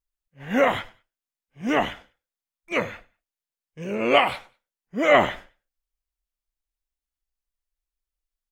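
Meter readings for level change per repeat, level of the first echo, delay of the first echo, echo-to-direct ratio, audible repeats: -11.0 dB, -22.5 dB, 99 ms, -22.0 dB, 2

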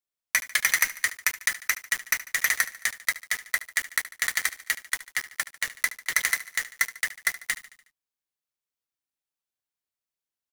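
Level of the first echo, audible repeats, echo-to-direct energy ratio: -16.0 dB, 4, -14.5 dB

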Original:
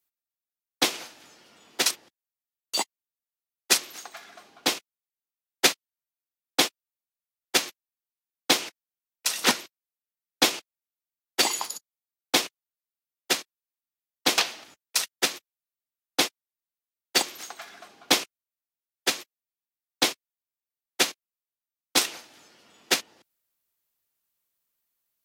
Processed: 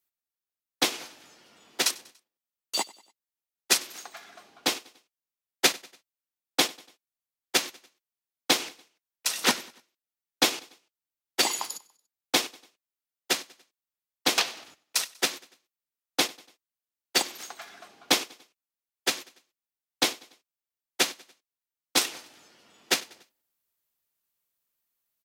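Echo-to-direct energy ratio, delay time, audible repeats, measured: -21.0 dB, 96 ms, 2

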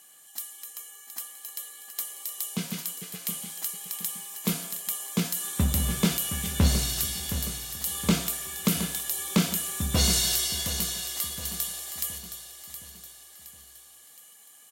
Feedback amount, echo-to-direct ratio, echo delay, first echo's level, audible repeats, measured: 48%, -9.5 dB, 0.718 s, -10.5 dB, 4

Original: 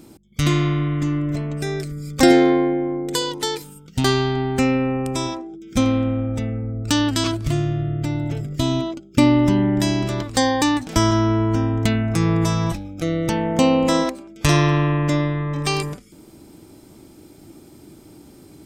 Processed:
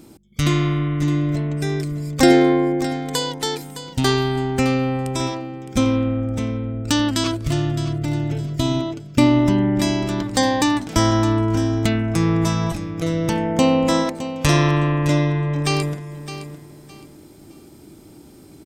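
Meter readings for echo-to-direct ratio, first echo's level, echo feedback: -11.5 dB, -12.0 dB, 26%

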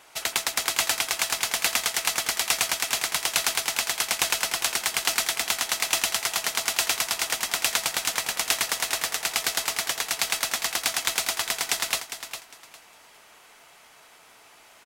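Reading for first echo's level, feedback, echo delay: -10.0 dB, 22%, 0.405 s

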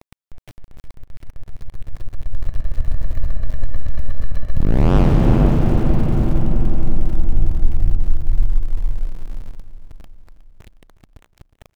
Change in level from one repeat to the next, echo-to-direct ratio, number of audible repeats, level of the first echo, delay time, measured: -4.5 dB, -12.0 dB, 5, -14.0 dB, 0.363 s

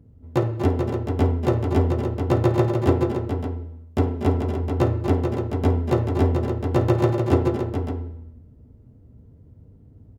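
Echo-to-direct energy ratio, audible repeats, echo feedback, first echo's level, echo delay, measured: -2.5 dB, 4, no steady repeat, -16.5 dB, 53 ms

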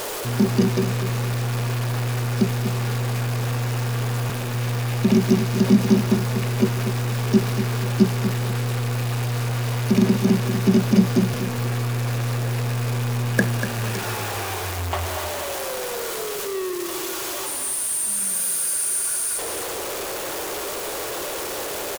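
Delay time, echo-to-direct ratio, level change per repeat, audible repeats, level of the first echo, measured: 0.242 s, -8.5 dB, -12.0 dB, 2, -9.0 dB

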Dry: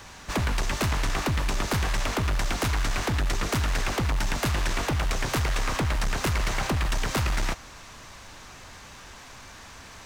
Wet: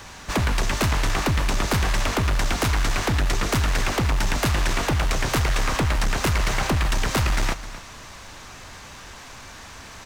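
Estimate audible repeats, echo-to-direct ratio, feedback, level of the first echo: 1, -15.5 dB, no steady repeat, -15.5 dB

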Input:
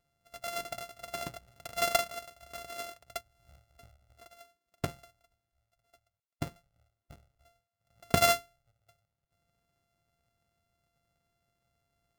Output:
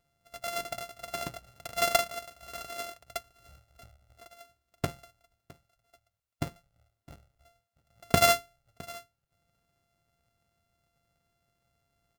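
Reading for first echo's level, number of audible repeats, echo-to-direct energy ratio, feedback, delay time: -21.5 dB, 1, -21.5 dB, no steady repeat, 0.661 s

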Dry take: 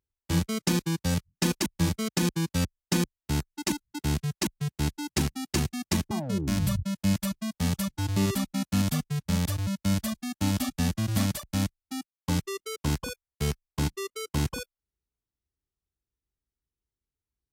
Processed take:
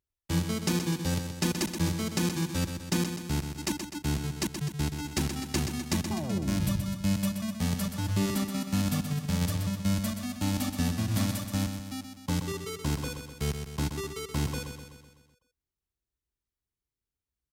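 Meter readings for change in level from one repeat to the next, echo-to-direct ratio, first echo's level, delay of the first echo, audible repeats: -5.0 dB, -6.0 dB, -7.5 dB, 0.126 s, 6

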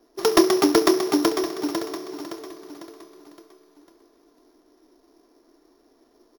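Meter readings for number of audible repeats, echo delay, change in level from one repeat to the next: 2, 1.066 s, -14.0 dB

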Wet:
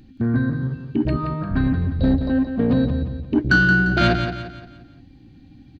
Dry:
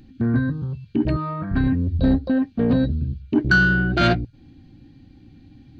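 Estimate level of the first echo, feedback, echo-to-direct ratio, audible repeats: -8.0 dB, 40%, -7.0 dB, 4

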